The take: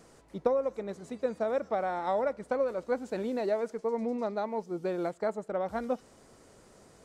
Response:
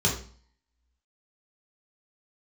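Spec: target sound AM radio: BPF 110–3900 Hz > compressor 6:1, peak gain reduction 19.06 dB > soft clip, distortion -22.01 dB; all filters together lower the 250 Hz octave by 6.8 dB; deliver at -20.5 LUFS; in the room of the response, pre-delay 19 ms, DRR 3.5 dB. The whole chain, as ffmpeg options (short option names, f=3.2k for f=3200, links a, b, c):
-filter_complex "[0:a]equalizer=f=250:t=o:g=-8.5,asplit=2[a][b];[1:a]atrim=start_sample=2205,adelay=19[c];[b][c]afir=irnorm=-1:irlink=0,volume=-15.5dB[d];[a][d]amix=inputs=2:normalize=0,highpass=110,lowpass=3.9k,acompressor=threshold=-44dB:ratio=6,asoftclip=threshold=-36.5dB,volume=27.5dB"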